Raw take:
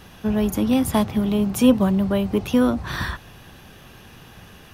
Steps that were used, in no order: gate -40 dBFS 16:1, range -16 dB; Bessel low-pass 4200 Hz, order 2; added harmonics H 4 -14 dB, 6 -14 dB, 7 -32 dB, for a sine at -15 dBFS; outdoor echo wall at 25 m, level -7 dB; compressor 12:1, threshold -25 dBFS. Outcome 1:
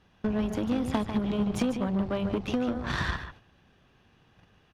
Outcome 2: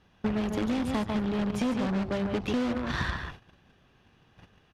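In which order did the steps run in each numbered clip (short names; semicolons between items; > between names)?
Bessel low-pass > compressor > gate > outdoor echo > added harmonics; outdoor echo > gate > added harmonics > Bessel low-pass > compressor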